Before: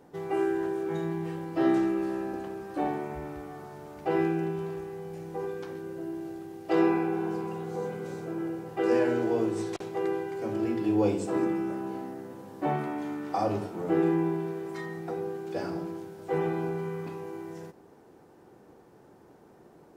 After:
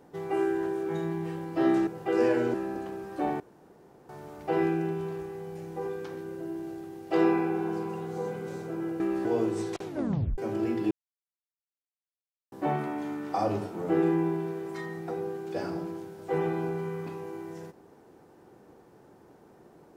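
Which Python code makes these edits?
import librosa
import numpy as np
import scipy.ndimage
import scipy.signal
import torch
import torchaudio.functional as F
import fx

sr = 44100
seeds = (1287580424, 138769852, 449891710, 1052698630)

y = fx.edit(x, sr, fx.swap(start_s=1.87, length_s=0.25, other_s=8.58, other_length_s=0.67),
    fx.room_tone_fill(start_s=2.98, length_s=0.69),
    fx.tape_stop(start_s=9.85, length_s=0.53),
    fx.silence(start_s=10.91, length_s=1.61), tone=tone)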